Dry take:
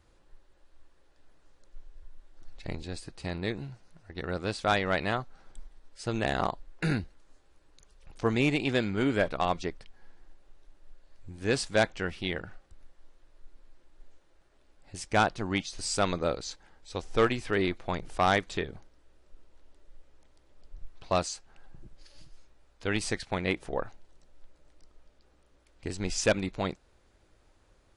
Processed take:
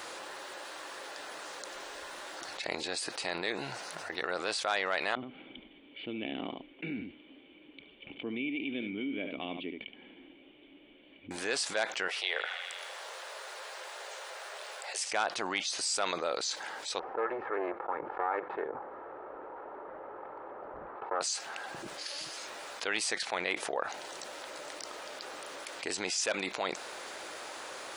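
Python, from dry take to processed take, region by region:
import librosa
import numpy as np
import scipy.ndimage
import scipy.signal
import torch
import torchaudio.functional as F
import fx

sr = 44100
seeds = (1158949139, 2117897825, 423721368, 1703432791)

y = fx.chain(x, sr, fx.formant_cascade(vowel='i'),
    fx.low_shelf(hz=100.0, db=10.0),
    fx.echo_single(ms=72, db=-14.0), at=(5.15, 11.31))
y = fx.chain(y, sr, fx.steep_highpass(hz=410.0, slope=48),
    fx.echo_banded(ms=80, feedback_pct=61, hz=2900.0, wet_db=-13.5), at=(12.08, 15.13))
y = fx.chain(y, sr, fx.lower_of_two(delay_ms=2.3),
    fx.lowpass(hz=1300.0, slope=24),
    fx.doppler_dist(depth_ms=0.19), at=(16.99, 21.21))
y = scipy.signal.sosfilt(scipy.signal.butter(2, 600.0, 'highpass', fs=sr, output='sos'), y)
y = fx.env_flatten(y, sr, amount_pct=70)
y = y * 10.0 ** (-6.5 / 20.0)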